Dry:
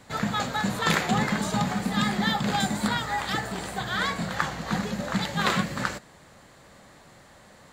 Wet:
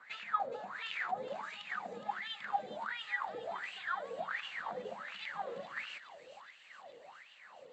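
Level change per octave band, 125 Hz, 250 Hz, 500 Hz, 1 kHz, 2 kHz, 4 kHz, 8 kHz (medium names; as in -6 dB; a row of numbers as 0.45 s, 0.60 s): -33.5 dB, -30.0 dB, -9.5 dB, -10.5 dB, -11.0 dB, -15.5 dB, under -25 dB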